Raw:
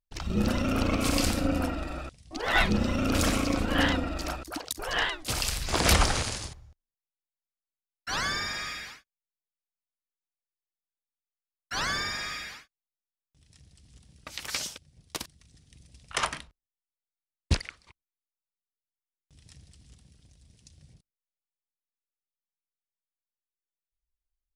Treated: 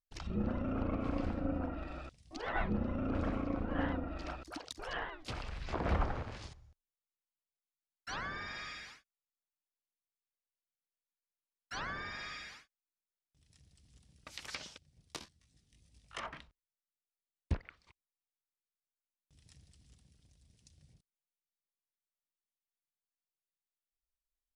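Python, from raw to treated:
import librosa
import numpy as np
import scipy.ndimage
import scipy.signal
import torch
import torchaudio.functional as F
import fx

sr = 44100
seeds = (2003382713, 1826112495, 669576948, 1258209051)

y = fx.env_lowpass_down(x, sr, base_hz=1300.0, full_db=-24.5)
y = fx.detune_double(y, sr, cents=13, at=(15.16, 16.32), fade=0.02)
y = F.gain(torch.from_numpy(y), -8.5).numpy()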